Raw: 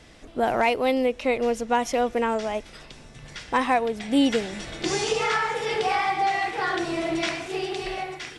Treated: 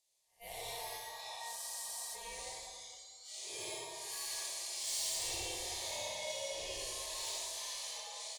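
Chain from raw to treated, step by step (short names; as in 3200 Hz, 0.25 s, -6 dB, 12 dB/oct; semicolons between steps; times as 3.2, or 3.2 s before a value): time blur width 0.185 s; pre-emphasis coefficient 0.9; spectral noise reduction 25 dB; high shelf 3800 Hz +12 dB; in parallel at 0 dB: compressor, threshold -48 dBFS, peak gain reduction 20 dB; on the sum: ring modulator 1400 Hz; soft clip -31.5 dBFS, distortion -12 dB; fixed phaser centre 580 Hz, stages 4; outdoor echo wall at 53 m, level -14 dB; plate-style reverb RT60 1.7 s, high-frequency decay 0.55×, DRR -3.5 dB; spectral freeze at 1.58, 0.56 s; gain -3.5 dB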